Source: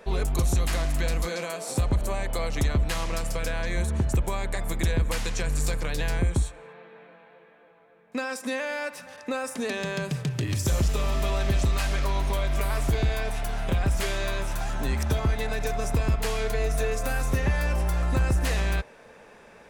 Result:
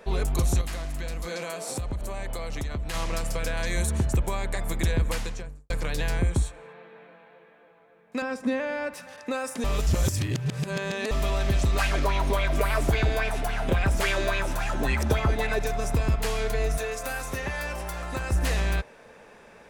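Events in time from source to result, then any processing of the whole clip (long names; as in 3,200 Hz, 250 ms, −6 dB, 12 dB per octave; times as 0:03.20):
0:00.61–0:02.94: downward compressor, threshold −28 dBFS
0:03.57–0:04.06: high-shelf EQ 4,800 Hz +10.5 dB
0:05.06–0:05.70: fade out and dull
0:08.22–0:08.94: RIAA equalisation playback
0:09.64–0:11.11: reverse
0:11.73–0:15.59: auto-filter bell 3.6 Hz 260–2,700 Hz +12 dB
0:16.77–0:18.32: low-shelf EQ 270 Hz −12 dB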